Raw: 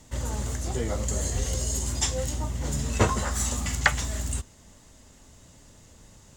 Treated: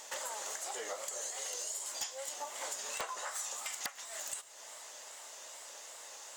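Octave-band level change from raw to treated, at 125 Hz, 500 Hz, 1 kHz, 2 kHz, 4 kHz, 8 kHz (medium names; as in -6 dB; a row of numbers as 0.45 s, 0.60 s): under -40 dB, -12.0 dB, -9.5 dB, -13.0 dB, -7.5 dB, -6.5 dB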